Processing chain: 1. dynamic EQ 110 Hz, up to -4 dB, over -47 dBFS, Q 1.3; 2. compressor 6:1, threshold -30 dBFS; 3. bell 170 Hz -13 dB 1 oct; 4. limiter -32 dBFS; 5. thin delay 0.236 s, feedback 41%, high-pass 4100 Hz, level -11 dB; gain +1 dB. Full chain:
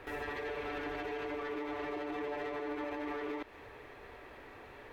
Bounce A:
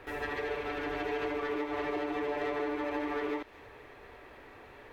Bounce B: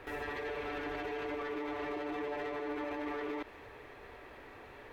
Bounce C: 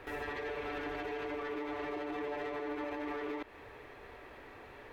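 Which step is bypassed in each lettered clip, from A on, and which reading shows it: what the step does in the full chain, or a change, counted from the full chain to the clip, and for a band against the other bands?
4, mean gain reduction 3.0 dB; 2, mean gain reduction 4.0 dB; 5, echo-to-direct -24.0 dB to none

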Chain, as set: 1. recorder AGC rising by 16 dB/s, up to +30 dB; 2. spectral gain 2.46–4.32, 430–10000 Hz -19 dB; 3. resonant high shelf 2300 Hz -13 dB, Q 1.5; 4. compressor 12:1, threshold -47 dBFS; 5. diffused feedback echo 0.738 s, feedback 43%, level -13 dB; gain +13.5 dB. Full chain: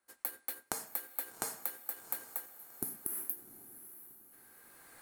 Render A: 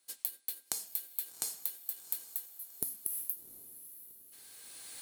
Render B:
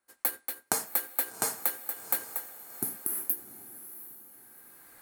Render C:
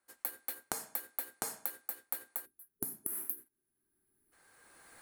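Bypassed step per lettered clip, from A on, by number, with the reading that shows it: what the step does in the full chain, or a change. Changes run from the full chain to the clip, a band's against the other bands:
3, 4 kHz band +12.0 dB; 4, mean gain reduction 5.5 dB; 5, echo-to-direct -12.0 dB to none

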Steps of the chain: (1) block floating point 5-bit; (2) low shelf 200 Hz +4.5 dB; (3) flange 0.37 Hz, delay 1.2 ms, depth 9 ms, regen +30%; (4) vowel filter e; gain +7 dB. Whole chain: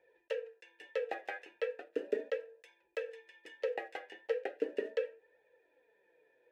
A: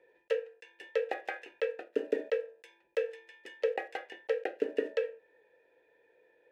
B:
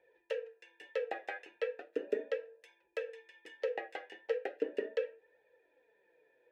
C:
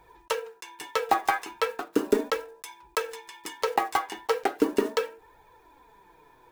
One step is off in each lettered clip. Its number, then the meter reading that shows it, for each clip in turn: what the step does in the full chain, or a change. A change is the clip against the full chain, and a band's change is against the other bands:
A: 3, loudness change +4.0 LU; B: 1, distortion -22 dB; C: 4, 500 Hz band -10.0 dB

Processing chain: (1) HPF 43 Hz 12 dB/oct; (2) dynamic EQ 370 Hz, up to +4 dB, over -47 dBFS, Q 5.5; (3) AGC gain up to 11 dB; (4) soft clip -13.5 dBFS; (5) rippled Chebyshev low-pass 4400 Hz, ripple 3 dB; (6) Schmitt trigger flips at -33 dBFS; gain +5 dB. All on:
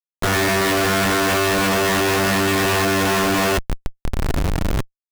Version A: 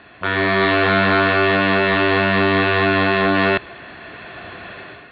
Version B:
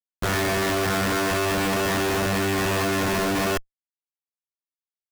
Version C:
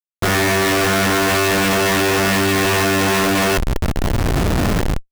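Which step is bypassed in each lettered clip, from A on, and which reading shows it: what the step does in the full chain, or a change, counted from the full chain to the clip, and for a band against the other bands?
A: 6, distortion -1 dB; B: 3, momentary loudness spread change -7 LU; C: 5, 125 Hz band +1.5 dB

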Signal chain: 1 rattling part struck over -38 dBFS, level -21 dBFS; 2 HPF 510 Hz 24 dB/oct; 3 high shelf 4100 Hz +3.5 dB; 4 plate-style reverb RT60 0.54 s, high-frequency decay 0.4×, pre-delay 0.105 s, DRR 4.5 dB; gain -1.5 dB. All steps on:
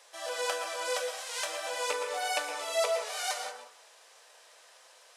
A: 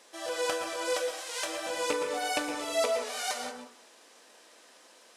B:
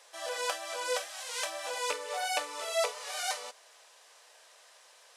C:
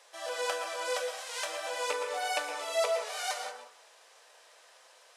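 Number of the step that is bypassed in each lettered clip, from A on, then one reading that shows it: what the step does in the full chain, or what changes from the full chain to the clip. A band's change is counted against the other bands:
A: 2, 250 Hz band +18.0 dB; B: 4, momentary loudness spread change -2 LU; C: 3, 8 kHz band -2.5 dB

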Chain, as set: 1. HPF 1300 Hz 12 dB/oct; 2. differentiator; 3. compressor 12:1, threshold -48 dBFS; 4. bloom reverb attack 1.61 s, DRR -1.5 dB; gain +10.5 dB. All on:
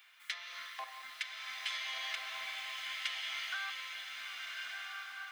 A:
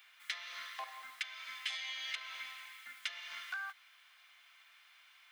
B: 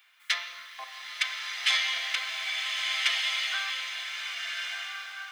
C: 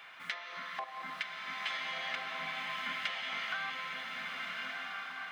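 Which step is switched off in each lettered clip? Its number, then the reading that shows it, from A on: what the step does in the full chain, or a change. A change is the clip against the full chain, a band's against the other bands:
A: 4, momentary loudness spread change +15 LU; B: 3, mean gain reduction 4.5 dB; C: 2, 8 kHz band -11.5 dB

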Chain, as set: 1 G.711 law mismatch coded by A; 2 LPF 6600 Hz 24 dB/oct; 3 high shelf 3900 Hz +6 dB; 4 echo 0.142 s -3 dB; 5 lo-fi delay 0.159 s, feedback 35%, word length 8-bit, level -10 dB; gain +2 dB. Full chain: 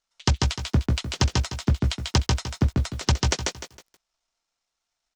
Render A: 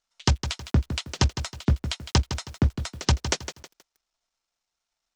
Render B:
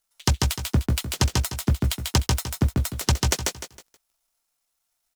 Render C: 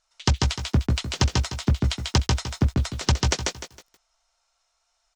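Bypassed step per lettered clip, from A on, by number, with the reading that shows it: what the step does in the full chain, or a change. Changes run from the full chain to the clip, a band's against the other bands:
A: 4, crest factor change +1.5 dB; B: 2, 8 kHz band +4.0 dB; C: 1, distortion -27 dB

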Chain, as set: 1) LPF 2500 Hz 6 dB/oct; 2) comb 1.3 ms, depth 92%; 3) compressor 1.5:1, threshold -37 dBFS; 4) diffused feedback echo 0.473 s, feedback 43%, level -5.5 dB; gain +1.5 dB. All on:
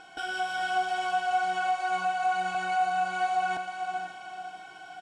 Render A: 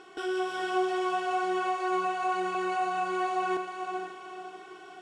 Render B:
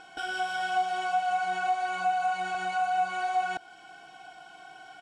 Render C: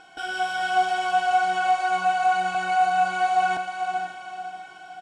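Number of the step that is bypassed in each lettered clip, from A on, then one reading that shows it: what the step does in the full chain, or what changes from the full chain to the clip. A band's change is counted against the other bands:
2, 250 Hz band +16.5 dB; 4, echo-to-direct -4.5 dB to none; 3, mean gain reduction 3.5 dB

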